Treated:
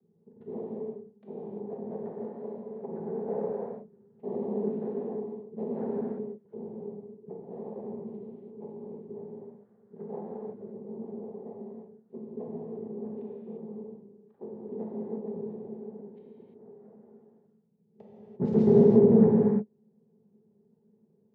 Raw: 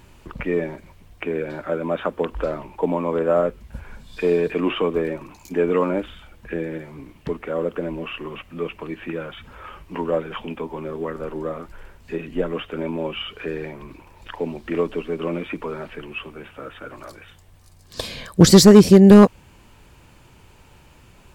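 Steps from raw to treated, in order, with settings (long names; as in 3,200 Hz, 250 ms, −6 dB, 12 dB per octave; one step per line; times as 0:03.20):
adaptive Wiener filter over 41 samples
cochlear-implant simulation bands 6
pair of resonant band-passes 300 Hz, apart 0.96 octaves
high-frequency loss of the air 95 metres
reverb whose tail is shaped and stops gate 370 ms flat, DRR −5 dB
level −8 dB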